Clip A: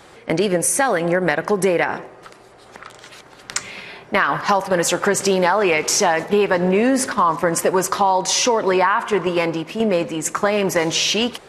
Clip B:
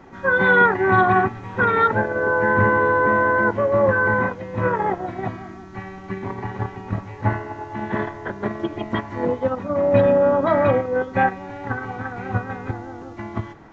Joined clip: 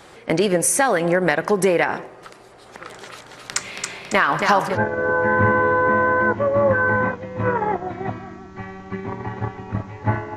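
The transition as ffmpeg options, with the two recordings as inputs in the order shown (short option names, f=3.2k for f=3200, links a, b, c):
-filter_complex "[0:a]asplit=3[a][b][c];[a]afade=t=out:st=2.8:d=0.02[d];[b]aecho=1:1:276|552|828|1104|1380:0.596|0.262|0.115|0.0507|0.0223,afade=t=in:st=2.8:d=0.02,afade=t=out:st=4.78:d=0.02[e];[c]afade=t=in:st=4.78:d=0.02[f];[d][e][f]amix=inputs=3:normalize=0,apad=whole_dur=10.36,atrim=end=10.36,atrim=end=4.78,asetpts=PTS-STARTPTS[g];[1:a]atrim=start=1.86:end=7.54,asetpts=PTS-STARTPTS[h];[g][h]acrossfade=d=0.1:c1=tri:c2=tri"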